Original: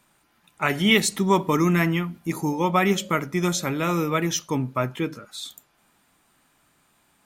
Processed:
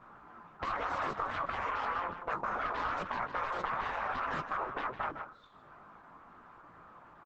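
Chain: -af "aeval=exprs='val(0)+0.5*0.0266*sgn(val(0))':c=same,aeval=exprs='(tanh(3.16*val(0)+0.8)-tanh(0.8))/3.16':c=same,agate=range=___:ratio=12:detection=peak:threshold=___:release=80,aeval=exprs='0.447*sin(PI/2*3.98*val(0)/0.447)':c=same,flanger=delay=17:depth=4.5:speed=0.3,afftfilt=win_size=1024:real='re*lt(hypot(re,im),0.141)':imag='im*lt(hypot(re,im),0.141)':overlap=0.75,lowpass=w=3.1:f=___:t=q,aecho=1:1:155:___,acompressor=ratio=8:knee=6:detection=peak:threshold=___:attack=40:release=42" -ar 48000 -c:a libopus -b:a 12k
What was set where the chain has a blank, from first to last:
-26dB, -32dB, 1.2k, 0.251, -35dB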